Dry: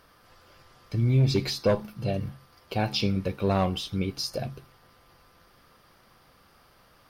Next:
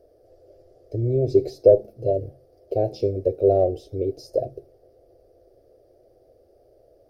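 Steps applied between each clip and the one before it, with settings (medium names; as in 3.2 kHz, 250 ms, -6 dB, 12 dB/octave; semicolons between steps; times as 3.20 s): FFT filter 120 Hz 0 dB, 170 Hz -21 dB, 380 Hz +12 dB, 660 Hz +10 dB, 1 kHz -29 dB, 1.7 kHz -22 dB, 3.1 kHz -24 dB, 5.3 kHz -13 dB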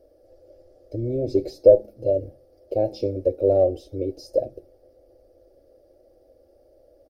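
comb 3.6 ms, depth 56%; trim -1 dB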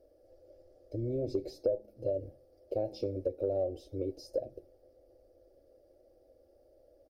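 compression 4:1, threshold -22 dBFS, peak gain reduction 12.5 dB; trim -7 dB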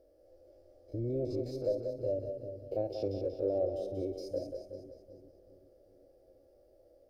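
spectrogram pixelated in time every 50 ms; two-band feedback delay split 350 Hz, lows 387 ms, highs 185 ms, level -6 dB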